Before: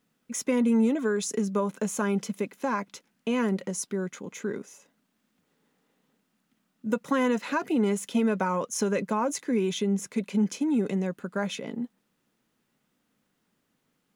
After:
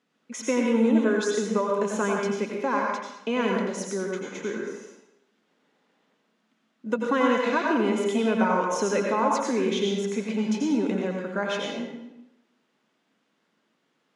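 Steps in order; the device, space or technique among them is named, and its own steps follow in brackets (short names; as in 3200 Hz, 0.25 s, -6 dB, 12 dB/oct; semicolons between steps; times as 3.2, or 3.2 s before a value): supermarket ceiling speaker (BPF 260–5100 Hz; reverb RT60 0.90 s, pre-delay 82 ms, DRR -0.5 dB); gain +2 dB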